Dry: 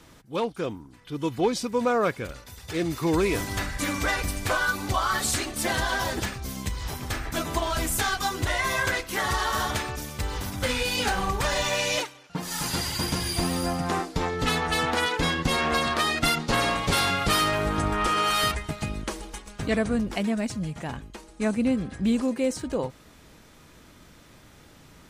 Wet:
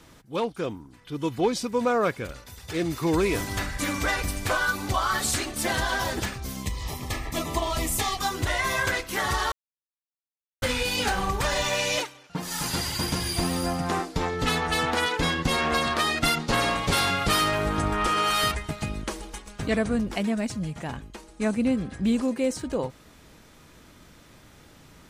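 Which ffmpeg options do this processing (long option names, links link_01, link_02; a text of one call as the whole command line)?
ffmpeg -i in.wav -filter_complex "[0:a]asettb=1/sr,asplit=3[link_01][link_02][link_03];[link_01]atrim=end=6.634[link_04];[link_02]atrim=start=6.63:end=8.19,asetpts=PTS-STARTPTS,afade=type=in:duration=0.004:curve=qsin,afade=type=out:start_time=1.556:duration=0.004:curve=qsin,asuperstop=centerf=1500:order=8:qfactor=4.3[link_05];[link_03]atrim=start=8.186[link_06];[link_04][link_05]acrossfade=duration=0.004:curve1=hsin:curve2=qsin[link_07];[link_07][link_06]acrossfade=duration=0.004:curve1=qsin:curve2=hsin,asplit=3[link_08][link_09][link_10];[link_08]atrim=end=9.52,asetpts=PTS-STARTPTS,afade=type=out:start_time=9.516:duration=0.004:curve=hsin[link_11];[link_09]atrim=start=9.52:end=10.62,asetpts=PTS-STARTPTS,volume=0[link_12];[link_10]atrim=start=10.62,asetpts=PTS-STARTPTS,afade=type=in:duration=0.004:curve=hsin[link_13];[link_11][link_12][link_13]concat=n=3:v=0:a=1" out.wav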